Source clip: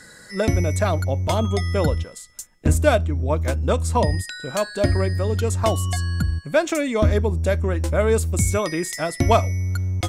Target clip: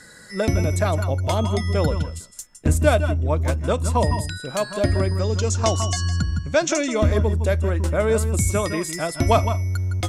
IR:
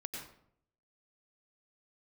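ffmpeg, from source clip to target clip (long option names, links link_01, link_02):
-filter_complex "[0:a]asettb=1/sr,asplit=3[link_01][link_02][link_03];[link_01]atrim=end=5.194[link_04];[link_02]atrim=start=5.19:end=6.95,asetpts=PTS-STARTPTS,afade=type=in:duration=0.004:curve=qsin,afade=type=out:start_time=1.756:duration=0.004:curve=qsin,lowpass=frequency=6100:width_type=q:width=3.8[link_05];[link_03]atrim=start=6.946[link_06];[link_04][link_05]acrossfade=duration=0.004:curve1=hsin:curve2=qsin[link_07];[link_07][link_06]acrossfade=duration=0.004:curve1=qsin:curve2=hsin[link_08];[1:a]atrim=start_sample=2205,atrim=end_sample=3969,asetrate=24255,aresample=44100[link_09];[link_08][link_09]afir=irnorm=-1:irlink=0"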